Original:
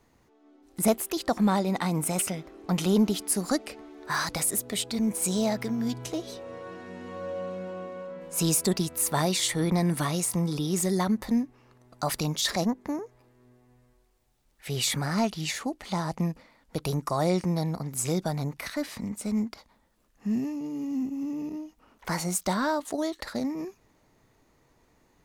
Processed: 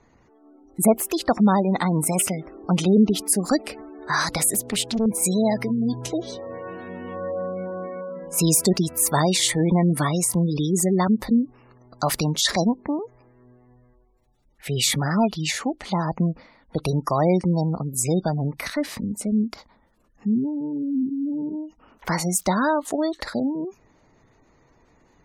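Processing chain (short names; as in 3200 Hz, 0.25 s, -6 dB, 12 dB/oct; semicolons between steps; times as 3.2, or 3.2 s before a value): spectral gate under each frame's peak -25 dB strong; 4.54–5.06 Doppler distortion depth 0.82 ms; gain +6 dB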